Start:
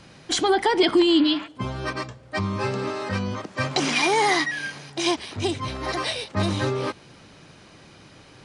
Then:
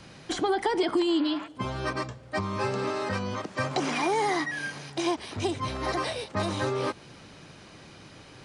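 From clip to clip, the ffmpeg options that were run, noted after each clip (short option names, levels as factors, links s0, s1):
-filter_complex "[0:a]acrossover=split=390|1600|5800[s0][s1][s2][s3];[s0]acompressor=threshold=0.0251:ratio=4[s4];[s1]acompressor=threshold=0.0501:ratio=4[s5];[s2]acompressor=threshold=0.01:ratio=4[s6];[s3]acompressor=threshold=0.00562:ratio=4[s7];[s4][s5][s6][s7]amix=inputs=4:normalize=0"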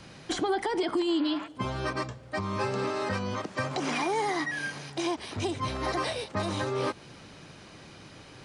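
-af "alimiter=limit=0.106:level=0:latency=1:release=146"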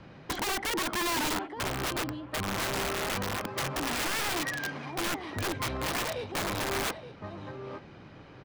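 -af "aecho=1:1:872:0.282,adynamicsmooth=sensitivity=2.5:basefreq=2400,aeval=exprs='(mod(18.8*val(0)+1,2)-1)/18.8':c=same"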